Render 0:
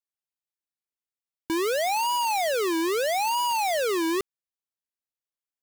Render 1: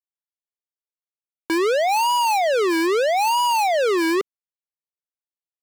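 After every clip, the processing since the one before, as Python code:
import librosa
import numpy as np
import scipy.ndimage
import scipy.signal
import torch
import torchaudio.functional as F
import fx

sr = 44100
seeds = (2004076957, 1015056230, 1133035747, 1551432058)

y = scipy.signal.sosfilt(scipy.signal.butter(4, 420.0, 'highpass', fs=sr, output='sos'), x)
y = fx.tilt_eq(y, sr, slope=-4.5)
y = fx.leveller(y, sr, passes=5)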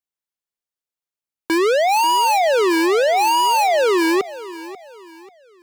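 y = fx.echo_feedback(x, sr, ms=539, feedback_pct=36, wet_db=-16.5)
y = F.gain(torch.from_numpy(y), 3.0).numpy()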